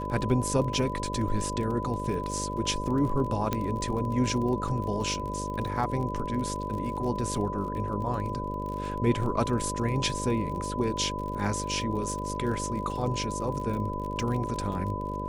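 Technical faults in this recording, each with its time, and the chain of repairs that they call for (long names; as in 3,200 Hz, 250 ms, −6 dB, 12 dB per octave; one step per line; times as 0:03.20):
mains buzz 50 Hz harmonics 12 −35 dBFS
surface crackle 41 per second −35 dBFS
whistle 1,000 Hz −34 dBFS
0:03.53: click −13 dBFS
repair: click removal
hum removal 50 Hz, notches 12
notch filter 1,000 Hz, Q 30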